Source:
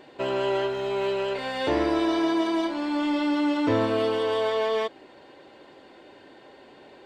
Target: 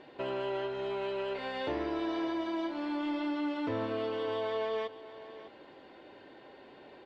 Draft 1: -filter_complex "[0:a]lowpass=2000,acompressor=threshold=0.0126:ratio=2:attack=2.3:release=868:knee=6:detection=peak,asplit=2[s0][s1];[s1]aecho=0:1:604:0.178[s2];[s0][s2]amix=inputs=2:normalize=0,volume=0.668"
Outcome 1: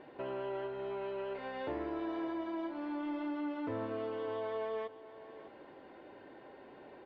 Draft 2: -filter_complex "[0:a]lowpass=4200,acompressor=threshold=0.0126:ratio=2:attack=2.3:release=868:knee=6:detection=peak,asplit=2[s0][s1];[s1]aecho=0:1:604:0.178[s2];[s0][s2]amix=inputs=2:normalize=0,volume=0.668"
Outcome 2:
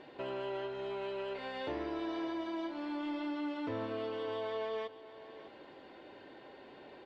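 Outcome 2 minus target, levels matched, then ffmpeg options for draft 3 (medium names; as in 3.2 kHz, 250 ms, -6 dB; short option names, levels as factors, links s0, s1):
compression: peak gain reduction +4 dB
-filter_complex "[0:a]lowpass=4200,acompressor=threshold=0.0335:ratio=2:attack=2.3:release=868:knee=6:detection=peak,asplit=2[s0][s1];[s1]aecho=0:1:604:0.178[s2];[s0][s2]amix=inputs=2:normalize=0,volume=0.668"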